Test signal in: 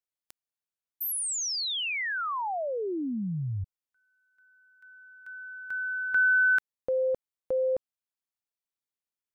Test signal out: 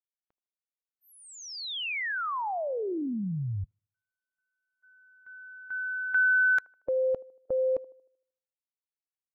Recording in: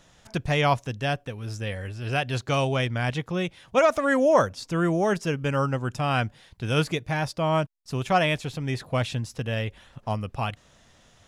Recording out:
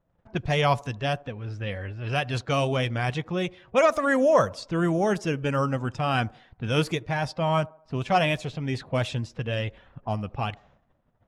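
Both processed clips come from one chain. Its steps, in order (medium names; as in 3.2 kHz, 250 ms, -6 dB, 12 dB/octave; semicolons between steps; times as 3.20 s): coarse spectral quantiser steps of 15 dB; gate -55 dBFS, range -14 dB; level-controlled noise filter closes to 1 kHz, open at -21.5 dBFS; feedback echo behind a band-pass 77 ms, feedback 43%, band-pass 540 Hz, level -21 dB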